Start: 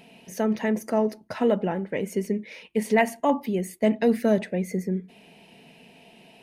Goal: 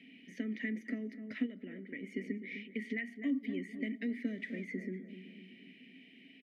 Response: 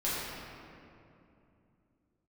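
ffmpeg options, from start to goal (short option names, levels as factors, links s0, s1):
-filter_complex "[0:a]asettb=1/sr,asplit=3[s0][s1][s2];[s0]atrim=end=4.254[s3];[s1]atrim=start=4.25:end=4.65,asetpts=PTS-STARTPTS,afade=t=in:d=0.004:c=qsin,afade=t=out:st=0.396:d=0.004:c=qsin,aeval=exprs='val(0)+0.5*0.0126*sgn(val(0))':c=same[s4];[s2]atrim=start=4.646[s5];[s3][s4]acrossfade=d=0.004:c1=hsin:c2=qsin[s6];[s6][s5]acrossfade=d=0.004:c1=qsin:c2=hsin,asplit=2[s7][s8];[s8]adelay=253,lowpass=f=1400:p=1,volume=0.224,asplit=2[s9][s10];[s10]adelay=253,lowpass=f=1400:p=1,volume=0.49,asplit=2[s11][s12];[s12]adelay=253,lowpass=f=1400:p=1,volume=0.49,asplit=2[s13][s14];[s14]adelay=253,lowpass=f=1400:p=1,volume=0.49,asplit=2[s15][s16];[s16]adelay=253,lowpass=f=1400:p=1,volume=0.49[s17];[s7][s9][s11][s13][s15][s17]amix=inputs=6:normalize=0,alimiter=limit=0.158:level=0:latency=1:release=441,equalizer=f=1900:w=7:g=14.5,acrossover=split=230|6600[s18][s19][s20];[s18]acompressor=threshold=0.0126:ratio=4[s21];[s19]acompressor=threshold=0.0501:ratio=4[s22];[s20]acompressor=threshold=0.00398:ratio=4[s23];[s21][s22][s23]amix=inputs=3:normalize=0,asplit=3[s24][s25][s26];[s24]bandpass=f=270:t=q:w=8,volume=1[s27];[s25]bandpass=f=2290:t=q:w=8,volume=0.501[s28];[s26]bandpass=f=3010:t=q:w=8,volume=0.355[s29];[s27][s28][s29]amix=inputs=3:normalize=0,asplit=3[s30][s31][s32];[s30]afade=t=out:st=1.45:d=0.02[s33];[s31]acompressor=threshold=0.00355:ratio=2,afade=t=in:st=1.45:d=0.02,afade=t=out:st=2.02:d=0.02[s34];[s32]afade=t=in:st=2.02:d=0.02[s35];[s33][s34][s35]amix=inputs=3:normalize=0,volume=1.58"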